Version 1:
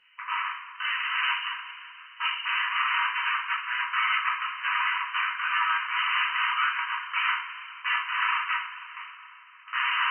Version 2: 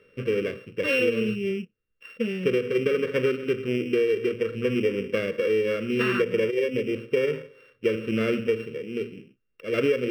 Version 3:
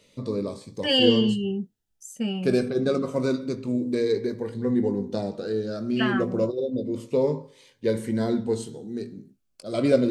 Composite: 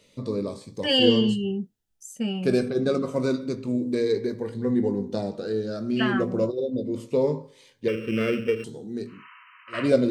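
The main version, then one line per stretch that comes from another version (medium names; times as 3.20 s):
3
7.88–8.64 s: from 2
9.17–9.79 s: from 1, crossfade 0.24 s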